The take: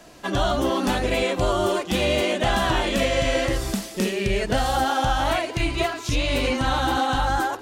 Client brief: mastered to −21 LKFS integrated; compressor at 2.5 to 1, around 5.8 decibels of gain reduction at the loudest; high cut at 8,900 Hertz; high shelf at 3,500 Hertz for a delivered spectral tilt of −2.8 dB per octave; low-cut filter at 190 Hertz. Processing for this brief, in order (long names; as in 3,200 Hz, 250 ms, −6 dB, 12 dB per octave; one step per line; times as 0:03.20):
high-pass filter 190 Hz
low-pass filter 8,900 Hz
high-shelf EQ 3,500 Hz −8 dB
downward compressor 2.5 to 1, threshold −28 dBFS
level +8.5 dB